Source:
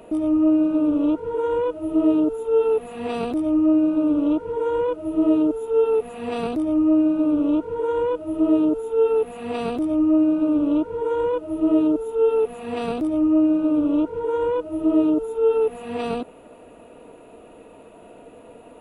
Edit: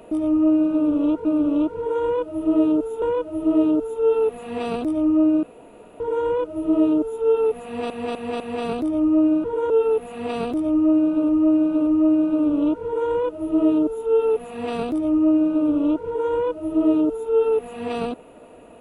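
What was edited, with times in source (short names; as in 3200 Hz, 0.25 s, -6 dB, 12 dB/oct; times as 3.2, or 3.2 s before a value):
1.25–1.51 swap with 7.18–8.95
3.92–4.49 room tone
6.14–6.39 loop, 4 plays
9.96–10.54 loop, 3 plays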